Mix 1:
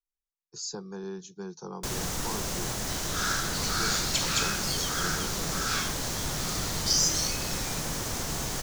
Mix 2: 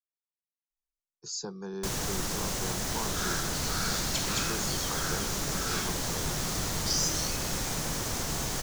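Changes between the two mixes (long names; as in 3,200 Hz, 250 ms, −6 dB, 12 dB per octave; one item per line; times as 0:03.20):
speech: entry +0.70 s
second sound −5.0 dB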